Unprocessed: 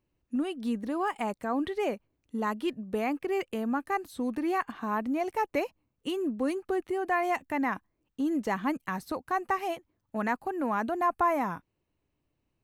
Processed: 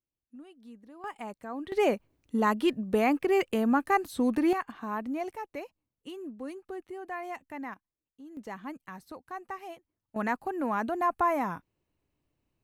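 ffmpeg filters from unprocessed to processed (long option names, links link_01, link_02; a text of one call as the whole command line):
ffmpeg -i in.wav -af "asetnsamples=nb_out_samples=441:pad=0,asendcmd='1.04 volume volume -8dB;1.72 volume volume 5dB;4.53 volume volume -3.5dB;5.36 volume volume -10dB;7.74 volume volume -19dB;8.37 volume volume -10.5dB;10.16 volume volume -0.5dB',volume=-18.5dB" out.wav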